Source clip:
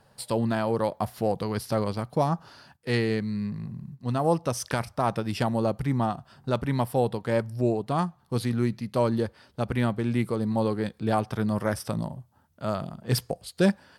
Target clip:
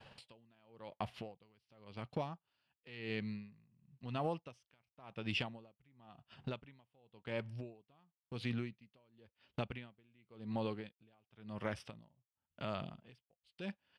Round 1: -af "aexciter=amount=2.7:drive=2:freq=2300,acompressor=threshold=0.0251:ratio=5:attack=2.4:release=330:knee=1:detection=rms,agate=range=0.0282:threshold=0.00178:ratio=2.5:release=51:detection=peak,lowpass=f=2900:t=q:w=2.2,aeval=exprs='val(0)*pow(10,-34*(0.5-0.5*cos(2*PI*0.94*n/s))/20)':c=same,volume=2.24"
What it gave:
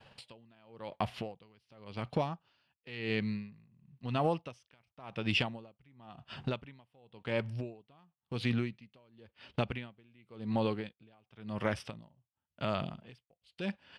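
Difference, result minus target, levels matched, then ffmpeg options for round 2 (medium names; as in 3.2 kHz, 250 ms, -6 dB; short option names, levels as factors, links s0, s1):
compression: peak gain reduction -7 dB
-af "aexciter=amount=2.7:drive=2:freq=2300,acompressor=threshold=0.00891:ratio=5:attack=2.4:release=330:knee=1:detection=rms,agate=range=0.0282:threshold=0.00178:ratio=2.5:release=51:detection=peak,lowpass=f=2900:t=q:w=2.2,aeval=exprs='val(0)*pow(10,-34*(0.5-0.5*cos(2*PI*0.94*n/s))/20)':c=same,volume=2.24"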